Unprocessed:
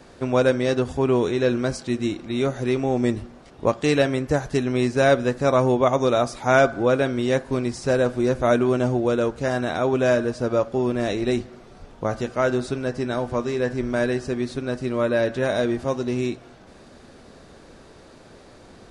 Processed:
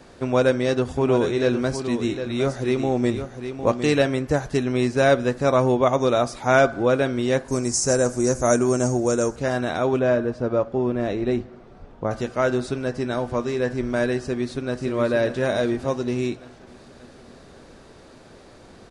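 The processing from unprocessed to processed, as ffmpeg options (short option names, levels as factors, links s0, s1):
-filter_complex "[0:a]asplit=3[s0][s1][s2];[s0]afade=t=out:st=0.83:d=0.02[s3];[s1]aecho=1:1:757:0.355,afade=t=in:st=0.83:d=0.02,afade=t=out:st=4.11:d=0.02[s4];[s2]afade=t=in:st=4.11:d=0.02[s5];[s3][s4][s5]amix=inputs=3:normalize=0,asettb=1/sr,asplit=3[s6][s7][s8];[s6]atrim=end=7.484[s9];[s7]atrim=start=7.48:end=9.36,asetpts=PTS-STARTPTS,afade=t=in:d=0.004:c=qsin,afade=t=out:st=1.876:d=0.004:c=qsin,highshelf=f=4800:t=q:w=3:g=11.5[s10];[s8]atrim=start=9.356[s11];[s9][s10]acrossfade=d=0.004:c1=hsin:c2=qsin[s12];[s12][s11]acrossfade=d=0.004:c1=qsin:c2=hsin,asettb=1/sr,asplit=3[s13][s14][s15];[s13]atrim=end=9.994[s16];[s14]atrim=start=9.99:end=12.11,asetpts=PTS-STARTPTS,afade=t=in:d=0.004:c=qsin,afade=t=out:st=2.116:d=0.004:c=qsin,lowpass=f=1600:p=1[s17];[s15]atrim=start=12.106[s18];[s16][s17]acrossfade=d=0.004:c1=hsin:c2=qsin[s19];[s19][s18]acrossfade=d=0.004:c1=qsin:c2=hsin,asplit=2[s20][s21];[s21]afade=t=in:st=14.17:d=0.01,afade=t=out:st=14.81:d=0.01,aecho=0:1:580|1160|1740|2320|2900|3480|4060:0.398107|0.218959|0.120427|0.0662351|0.0364293|0.0200361|0.0110199[s22];[s20][s22]amix=inputs=2:normalize=0"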